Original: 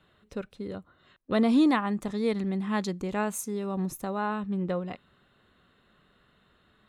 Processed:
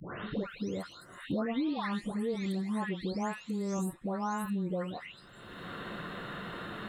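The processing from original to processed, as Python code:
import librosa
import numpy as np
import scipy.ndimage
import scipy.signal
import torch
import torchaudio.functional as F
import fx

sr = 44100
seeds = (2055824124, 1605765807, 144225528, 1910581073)

y = fx.spec_delay(x, sr, highs='late', ms=489)
y = fx.band_squash(y, sr, depth_pct=100)
y = y * librosa.db_to_amplitude(-3.5)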